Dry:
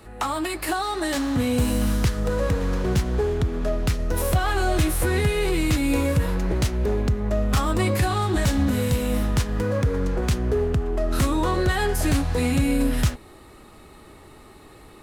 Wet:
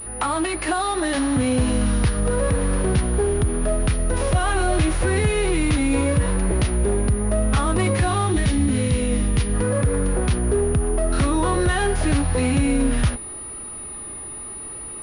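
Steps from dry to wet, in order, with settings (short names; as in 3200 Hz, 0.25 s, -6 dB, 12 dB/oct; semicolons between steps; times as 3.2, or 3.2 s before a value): vibrato 0.83 Hz 45 cents; spectral gain 8.32–9.54, 500–1800 Hz -7 dB; in parallel at +2 dB: limiter -21 dBFS, peak gain reduction 10 dB; on the sum: pulse-width modulation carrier 9700 Hz; gain -2 dB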